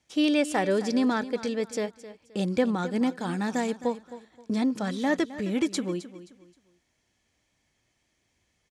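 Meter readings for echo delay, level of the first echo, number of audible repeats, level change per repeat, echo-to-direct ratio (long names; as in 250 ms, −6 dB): 263 ms, −15.0 dB, 2, −10.5 dB, −14.5 dB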